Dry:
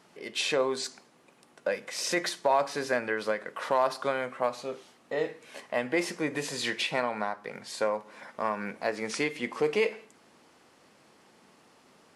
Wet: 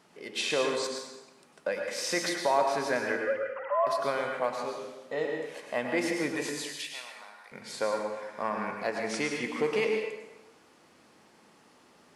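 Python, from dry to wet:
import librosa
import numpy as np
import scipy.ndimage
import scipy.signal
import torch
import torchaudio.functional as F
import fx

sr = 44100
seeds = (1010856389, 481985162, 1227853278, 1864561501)

y = fx.sine_speech(x, sr, at=(3.16, 3.87))
y = fx.differentiator(y, sr, at=(6.5, 7.52))
y = fx.rev_plate(y, sr, seeds[0], rt60_s=1.0, hf_ratio=0.85, predelay_ms=90, drr_db=2.0)
y = y * 10.0 ** (-2.0 / 20.0)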